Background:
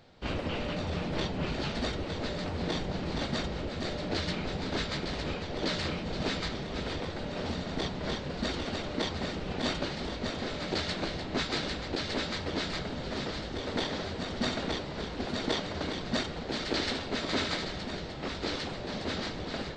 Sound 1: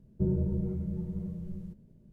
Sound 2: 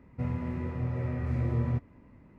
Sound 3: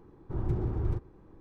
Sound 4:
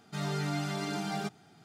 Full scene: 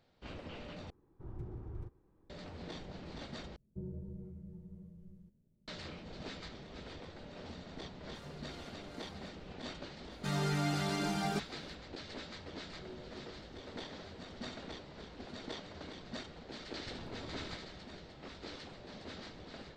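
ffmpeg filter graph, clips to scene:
ffmpeg -i bed.wav -i cue0.wav -i cue1.wav -i cue2.wav -i cue3.wav -filter_complex "[3:a]asplit=2[link_01][link_02];[1:a]asplit=2[link_03][link_04];[4:a]asplit=2[link_05][link_06];[0:a]volume=-13.5dB[link_07];[link_05]acrossover=split=480[link_08][link_09];[link_08]aeval=exprs='val(0)*(1-0.7/2+0.7/2*cos(2*PI*2.5*n/s))':channel_layout=same[link_10];[link_09]aeval=exprs='val(0)*(1-0.7/2-0.7/2*cos(2*PI*2.5*n/s))':channel_layout=same[link_11];[link_10][link_11]amix=inputs=2:normalize=0[link_12];[link_04]highpass=frequency=370:width=0.5412,highpass=frequency=370:width=1.3066[link_13];[link_02]aeval=exprs='0.0266*(abs(mod(val(0)/0.0266+3,4)-2)-1)':channel_layout=same[link_14];[link_07]asplit=3[link_15][link_16][link_17];[link_15]atrim=end=0.904[link_18];[link_01]atrim=end=1.4,asetpts=PTS-STARTPTS,volume=-14.5dB[link_19];[link_16]atrim=start=2.296:end=3.564[link_20];[link_03]atrim=end=2.12,asetpts=PTS-STARTPTS,volume=-15.5dB[link_21];[link_17]atrim=start=5.676[link_22];[link_12]atrim=end=1.64,asetpts=PTS-STARTPTS,volume=-17dB,afade=type=in:duration=0.004:curve=hsin,afade=type=out:start_time=1.636:duration=0.004:curve=hsin,adelay=8010[link_23];[link_06]atrim=end=1.64,asetpts=PTS-STARTPTS,volume=-0.5dB,afade=type=in:duration=0.004:curve=hsin,afade=type=out:start_time=1.636:duration=0.004:curve=hsin,adelay=10110[link_24];[link_13]atrim=end=2.12,asetpts=PTS-STARTPTS,volume=-13dB,afade=type=in:duration=0.004:curve=hsin,afade=type=out:start_time=2.116:duration=0.004:curve=hsin,adelay=12620[link_25];[link_14]atrim=end=1.4,asetpts=PTS-STARTPTS,volume=-11.5dB,afade=type=in:duration=0.004:curve=hsin,afade=type=out:start_time=1.396:duration=0.004:curve=hsin,adelay=16570[link_26];[link_18][link_19]acrossfade=duration=0.004:curve1=hsin:curve2=hsin[link_27];[link_27][link_20]acrossfade=duration=0.004:curve1=hsin:curve2=hsin[link_28];[link_28][link_21]acrossfade=duration=0.004:curve1=hsin:curve2=hsin[link_29];[link_29][link_22]acrossfade=duration=0.004:curve1=hsin:curve2=hsin[link_30];[link_30][link_23][link_24][link_25][link_26]amix=inputs=5:normalize=0" out.wav

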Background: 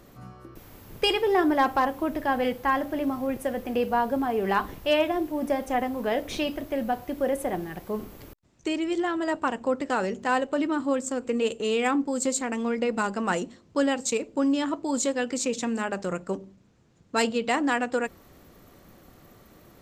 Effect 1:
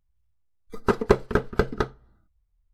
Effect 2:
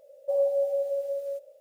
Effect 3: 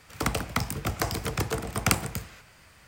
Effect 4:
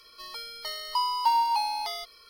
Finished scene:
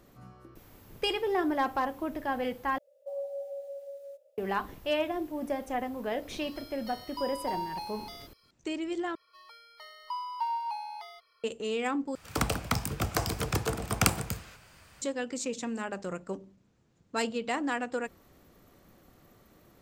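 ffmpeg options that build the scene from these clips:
ffmpeg -i bed.wav -i cue0.wav -i cue1.wav -i cue2.wav -i cue3.wav -filter_complex "[4:a]asplit=2[link_01][link_02];[0:a]volume=-6.5dB[link_03];[2:a]highpass=480[link_04];[link_02]acrossover=split=560 2500:gain=0.141 1 0.224[link_05][link_06][link_07];[link_05][link_06][link_07]amix=inputs=3:normalize=0[link_08];[3:a]equalizer=frequency=2000:width_type=o:width=0.26:gain=-4[link_09];[link_03]asplit=4[link_10][link_11][link_12][link_13];[link_10]atrim=end=2.784[link_14];[link_04]atrim=end=1.6,asetpts=PTS-STARTPTS,volume=-10dB[link_15];[link_11]atrim=start=4.376:end=9.154[link_16];[link_08]atrim=end=2.29,asetpts=PTS-STARTPTS,volume=-7.5dB[link_17];[link_12]atrim=start=11.436:end=12.154[link_18];[link_09]atrim=end=2.87,asetpts=PTS-STARTPTS,volume=-1dB[link_19];[link_13]atrim=start=15.016[link_20];[link_01]atrim=end=2.29,asetpts=PTS-STARTPTS,volume=-12dB,afade=type=in:duration=0.004:curve=hsin,afade=type=out:start_time=2.286:duration=0.004:curve=hsin,adelay=6220[link_21];[link_14][link_15]acrossfade=duration=0.004:curve1=hsin:curve2=hsin[link_22];[link_22][link_16]acrossfade=duration=0.004:curve1=hsin:curve2=hsin[link_23];[link_23][link_17]acrossfade=duration=0.004:curve1=hsin:curve2=hsin[link_24];[link_24][link_18]acrossfade=duration=0.004:curve1=hsin:curve2=hsin[link_25];[link_25][link_19]acrossfade=duration=0.004:curve1=hsin:curve2=hsin[link_26];[link_26][link_20]acrossfade=duration=0.004:curve1=hsin:curve2=hsin[link_27];[link_27][link_21]amix=inputs=2:normalize=0" out.wav

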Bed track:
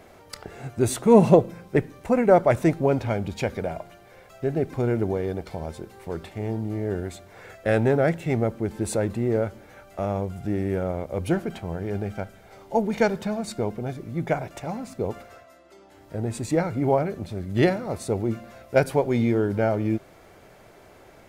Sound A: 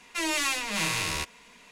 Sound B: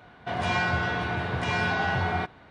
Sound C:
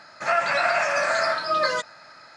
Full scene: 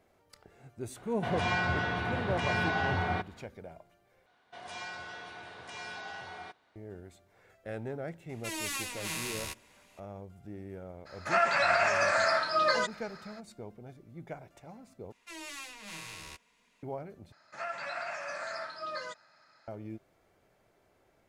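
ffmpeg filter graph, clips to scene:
ffmpeg -i bed.wav -i cue0.wav -i cue1.wav -i cue2.wav -filter_complex "[2:a]asplit=2[link_01][link_02];[1:a]asplit=2[link_03][link_04];[3:a]asplit=2[link_05][link_06];[0:a]volume=-18dB[link_07];[link_02]bass=frequency=250:gain=-14,treble=frequency=4000:gain=12[link_08];[link_03]equalizer=frequency=13000:width_type=o:width=1:gain=9[link_09];[link_07]asplit=4[link_10][link_11][link_12][link_13];[link_10]atrim=end=4.264[link_14];[link_08]atrim=end=2.5,asetpts=PTS-STARTPTS,volume=-16dB[link_15];[link_11]atrim=start=6.756:end=15.124[link_16];[link_04]atrim=end=1.71,asetpts=PTS-STARTPTS,volume=-16dB[link_17];[link_12]atrim=start=16.826:end=17.324[link_18];[link_06]atrim=end=2.36,asetpts=PTS-STARTPTS,volume=-16dB[link_19];[link_13]atrim=start=19.676[link_20];[link_01]atrim=end=2.5,asetpts=PTS-STARTPTS,volume=-4dB,afade=type=in:duration=0.004:curve=hsin,afade=type=out:start_time=2.496:duration=0.004:curve=hsin,adelay=960[link_21];[link_09]atrim=end=1.71,asetpts=PTS-STARTPTS,volume=-10dB,afade=type=in:duration=0.004:curve=hsin,afade=type=out:start_time=1.706:duration=0.004:curve=hsin,adelay=8290[link_22];[link_05]atrim=end=2.36,asetpts=PTS-STARTPTS,volume=-4dB,afade=type=in:duration=0.02,afade=type=out:start_time=2.34:duration=0.02,adelay=11050[link_23];[link_14][link_15]acrossfade=duration=0.004:curve1=hsin:curve2=hsin[link_24];[link_24][link_16]acrossfade=duration=0.004:curve1=hsin:curve2=hsin[link_25];[link_25][link_17]acrossfade=duration=0.004:curve1=hsin:curve2=hsin[link_26];[link_26][link_18]acrossfade=duration=0.004:curve1=hsin:curve2=hsin[link_27];[link_27][link_19]acrossfade=duration=0.004:curve1=hsin:curve2=hsin[link_28];[link_28][link_20]acrossfade=duration=0.004:curve1=hsin:curve2=hsin[link_29];[link_29][link_21][link_22][link_23]amix=inputs=4:normalize=0" out.wav

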